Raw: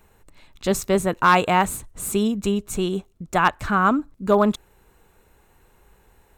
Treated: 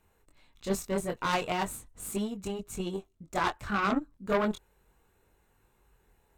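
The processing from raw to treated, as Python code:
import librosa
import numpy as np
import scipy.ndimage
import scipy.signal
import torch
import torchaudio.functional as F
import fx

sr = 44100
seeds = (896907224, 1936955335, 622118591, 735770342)

y = 10.0 ** (-15.5 / 20.0) * np.tanh(x / 10.0 ** (-15.5 / 20.0))
y = fx.chorus_voices(y, sr, voices=2, hz=0.38, base_ms=23, depth_ms=2.3, mix_pct=40)
y = fx.cheby_harmonics(y, sr, harmonics=(2, 3), levels_db=(-15, -14), full_scale_db=-14.5)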